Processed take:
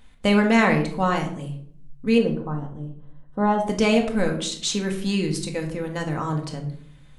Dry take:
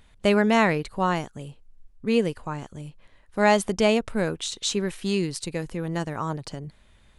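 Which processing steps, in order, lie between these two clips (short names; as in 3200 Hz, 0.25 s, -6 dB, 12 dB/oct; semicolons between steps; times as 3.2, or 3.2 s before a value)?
2.18–3.67 running mean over 19 samples; shoebox room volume 860 m³, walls furnished, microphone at 2 m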